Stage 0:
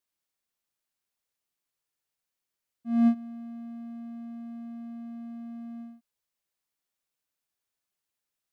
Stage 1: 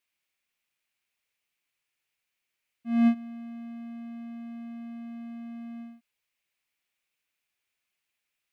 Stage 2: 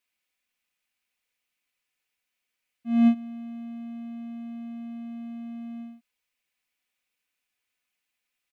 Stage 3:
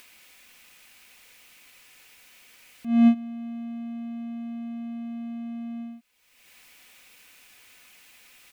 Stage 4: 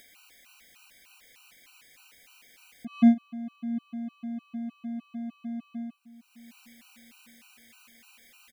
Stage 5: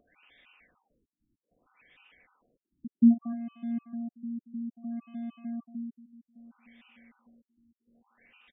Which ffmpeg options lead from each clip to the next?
-af "equalizer=f=2.4k:t=o:w=0.91:g=13"
-af "aecho=1:1:4:0.39"
-af "acompressor=mode=upward:threshold=-34dB:ratio=2.5,volume=2dB"
-filter_complex "[0:a]asplit=2[a][b];[b]adelay=729,lowpass=f=1.2k:p=1,volume=-18dB,asplit=2[c][d];[d]adelay=729,lowpass=f=1.2k:p=1,volume=0.45,asplit=2[e][f];[f]adelay=729,lowpass=f=1.2k:p=1,volume=0.45,asplit=2[g][h];[h]adelay=729,lowpass=f=1.2k:p=1,volume=0.45[i];[a][c][e][g][i]amix=inputs=5:normalize=0,afftfilt=real='re*gt(sin(2*PI*3.3*pts/sr)*(1-2*mod(floor(b*sr/1024/770),2)),0)':imag='im*gt(sin(2*PI*3.3*pts/sr)*(1-2*mod(floor(b*sr/1024/770),2)),0)':win_size=1024:overlap=0.75"
-filter_complex "[0:a]asplit=2[a][b];[b]adelay=230,highpass=300,lowpass=3.4k,asoftclip=type=hard:threshold=-19dB,volume=-10dB[c];[a][c]amix=inputs=2:normalize=0,afftfilt=real='re*lt(b*sr/1024,340*pow(3800/340,0.5+0.5*sin(2*PI*0.62*pts/sr)))':imag='im*lt(b*sr/1024,340*pow(3800/340,0.5+0.5*sin(2*PI*0.62*pts/sr)))':win_size=1024:overlap=0.75,volume=-1dB"

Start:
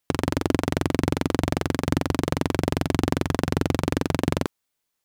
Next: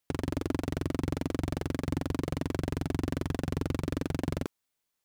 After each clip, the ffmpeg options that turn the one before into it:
-af "asoftclip=type=tanh:threshold=-16.5dB,volume=-3.5dB"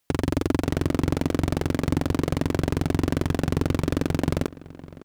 -filter_complex "[0:a]asplit=2[a][b];[b]adelay=558,lowpass=f=3.2k:p=1,volume=-18dB,asplit=2[c][d];[d]adelay=558,lowpass=f=3.2k:p=1,volume=0.33,asplit=2[e][f];[f]adelay=558,lowpass=f=3.2k:p=1,volume=0.33[g];[a][c][e][g]amix=inputs=4:normalize=0,volume=8dB"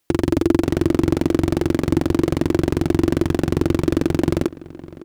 -af "equalizer=f=340:t=o:w=0.28:g=11.5,volume=2.5dB"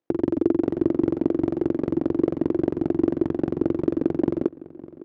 -af "bandpass=f=390:t=q:w=0.92:csg=0,tremolo=f=50:d=0.571"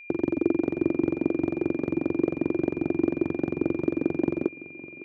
-af "highpass=70,aeval=exprs='val(0)+0.01*sin(2*PI*2400*n/s)':c=same,volume=-3dB"

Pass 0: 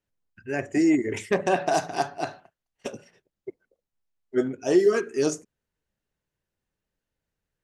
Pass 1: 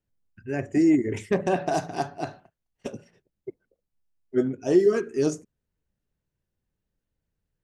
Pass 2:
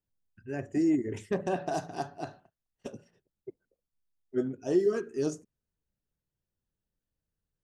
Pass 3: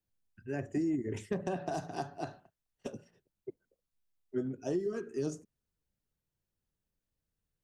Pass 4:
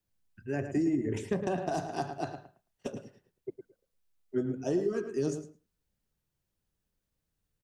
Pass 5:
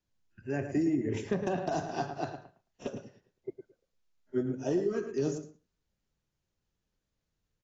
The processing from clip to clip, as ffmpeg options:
-af "lowshelf=f=360:g=11,volume=-5dB"
-af "equalizer=f=2.2k:w=5.4:g=-7,volume=-6.5dB"
-filter_complex "[0:a]acrossover=split=200[a][b];[b]acompressor=threshold=-32dB:ratio=10[c];[a][c]amix=inputs=2:normalize=0"
-filter_complex "[0:a]asplit=2[a][b];[b]adelay=109,lowpass=f=3.8k:p=1,volume=-9dB,asplit=2[c][d];[d]adelay=109,lowpass=f=3.8k:p=1,volume=0.16[e];[a][c][e]amix=inputs=3:normalize=0,volume=3.5dB"
-ar 16000 -c:a aac -b:a 24k

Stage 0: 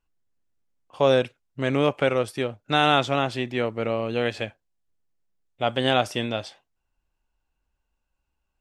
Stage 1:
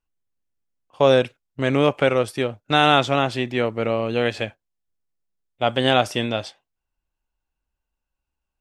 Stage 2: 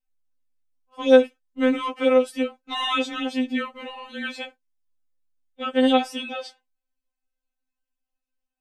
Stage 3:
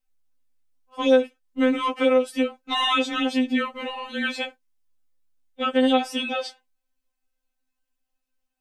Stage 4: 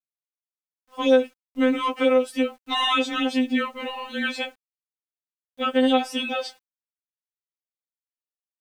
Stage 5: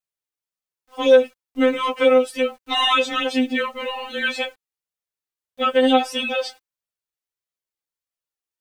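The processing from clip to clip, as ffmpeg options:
-af "agate=range=-8dB:threshold=-38dB:ratio=16:detection=peak,volume=3.5dB"
-af "afftfilt=real='re*3.46*eq(mod(b,12),0)':imag='im*3.46*eq(mod(b,12),0)':win_size=2048:overlap=0.75,volume=-2dB"
-af "acompressor=threshold=-25dB:ratio=2,volume=5dB"
-af "acrusher=bits=9:mix=0:aa=0.000001"
-af "flanger=delay=1.5:depth=1.1:regen=-33:speed=1.6:shape=triangular,volume=7.5dB"

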